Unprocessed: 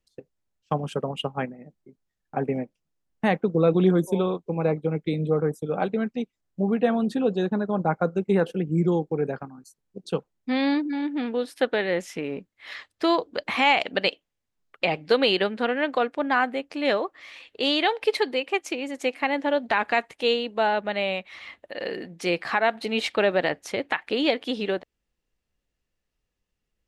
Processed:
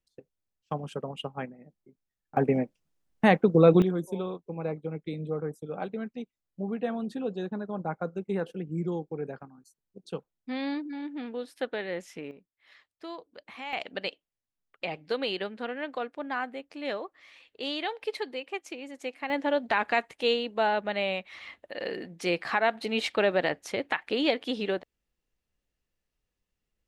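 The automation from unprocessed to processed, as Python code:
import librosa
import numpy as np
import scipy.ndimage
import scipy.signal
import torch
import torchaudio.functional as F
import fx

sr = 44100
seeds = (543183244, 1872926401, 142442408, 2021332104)

y = fx.gain(x, sr, db=fx.steps((0.0, -7.0), (2.37, 2.0), (3.82, -9.0), (12.31, -19.0), (13.73, -10.0), (19.3, -3.0)))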